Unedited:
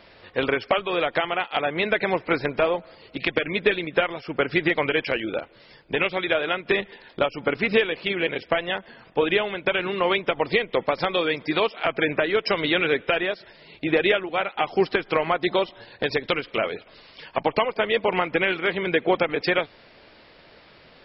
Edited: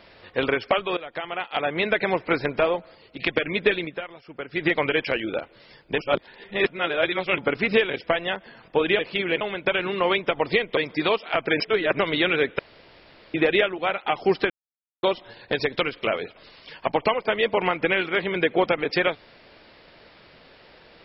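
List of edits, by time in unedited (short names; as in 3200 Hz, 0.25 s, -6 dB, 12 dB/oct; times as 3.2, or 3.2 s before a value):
0.97–1.7 fade in, from -18.5 dB
2.71–3.19 fade out, to -6.5 dB
3.85–4.65 dip -11.5 dB, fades 0.12 s
5.98–7.38 reverse
7.9–8.32 move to 9.41
10.77–11.28 cut
12.11–12.5 reverse
13.1–13.85 room tone
15.01–15.54 mute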